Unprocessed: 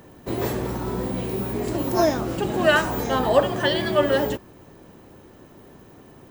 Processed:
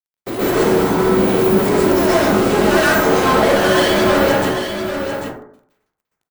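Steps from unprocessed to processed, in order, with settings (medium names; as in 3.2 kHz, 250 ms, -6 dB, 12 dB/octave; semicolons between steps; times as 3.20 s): octave divider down 2 oct, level 0 dB; high-pass 210 Hz 12 dB/octave; band-stop 960 Hz, Q 17; fuzz box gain 32 dB, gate -39 dBFS; delay 792 ms -8 dB; plate-style reverb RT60 0.63 s, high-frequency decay 0.4×, pre-delay 110 ms, DRR -7.5 dB; trim -7.5 dB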